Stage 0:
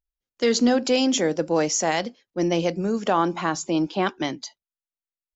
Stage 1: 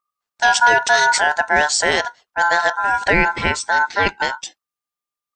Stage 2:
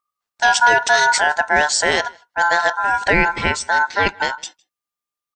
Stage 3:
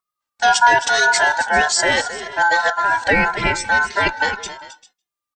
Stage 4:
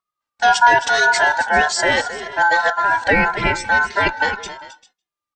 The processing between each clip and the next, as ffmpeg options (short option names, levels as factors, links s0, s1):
-af "aeval=exprs='val(0)*sin(2*PI*1200*n/s)':c=same,volume=2.66"
-filter_complex "[0:a]asplit=2[s0][s1];[s1]adelay=157.4,volume=0.0447,highshelf=f=4000:g=-3.54[s2];[s0][s2]amix=inputs=2:normalize=0"
-filter_complex "[0:a]aecho=1:1:266|396:0.237|0.126,asplit=2[s0][s1];[s1]adelay=2.4,afreqshift=-1.8[s2];[s0][s2]amix=inputs=2:normalize=1,volume=1.41"
-af "lowpass=f=4000:p=1,volume=1.12"